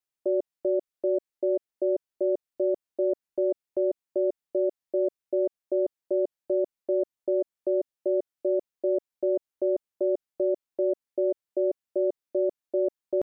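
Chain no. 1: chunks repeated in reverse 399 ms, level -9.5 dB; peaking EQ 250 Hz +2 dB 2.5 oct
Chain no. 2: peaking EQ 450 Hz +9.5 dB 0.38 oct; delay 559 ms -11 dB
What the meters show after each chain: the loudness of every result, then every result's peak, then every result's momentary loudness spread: -27.0 LUFS, -26.0 LUFS; -14.0 dBFS, -14.0 dBFS; 2 LU, 0 LU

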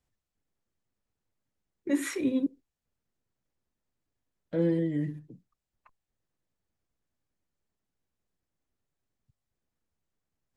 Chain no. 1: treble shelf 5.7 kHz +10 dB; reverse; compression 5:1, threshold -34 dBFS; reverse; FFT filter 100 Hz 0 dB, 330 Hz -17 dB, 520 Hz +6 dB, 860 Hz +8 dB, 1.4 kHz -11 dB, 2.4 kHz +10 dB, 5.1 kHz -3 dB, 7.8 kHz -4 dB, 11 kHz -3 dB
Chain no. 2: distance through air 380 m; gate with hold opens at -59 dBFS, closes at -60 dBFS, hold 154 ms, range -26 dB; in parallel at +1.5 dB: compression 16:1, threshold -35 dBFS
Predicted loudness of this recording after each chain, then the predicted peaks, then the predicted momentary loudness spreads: -41.5 LUFS, -28.5 LUFS; -26.0 dBFS, -15.0 dBFS; 11 LU, 13 LU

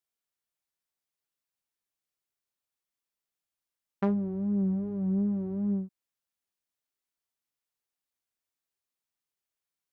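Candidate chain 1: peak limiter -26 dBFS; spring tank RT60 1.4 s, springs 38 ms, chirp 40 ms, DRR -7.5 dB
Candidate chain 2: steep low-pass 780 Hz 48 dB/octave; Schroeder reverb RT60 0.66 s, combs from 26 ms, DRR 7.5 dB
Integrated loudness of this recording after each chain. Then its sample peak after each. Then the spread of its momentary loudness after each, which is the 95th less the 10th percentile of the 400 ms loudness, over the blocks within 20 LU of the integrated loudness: -31.5 LUFS, -29.5 LUFS; -19.5 dBFS, -17.5 dBFS; 9 LU, 5 LU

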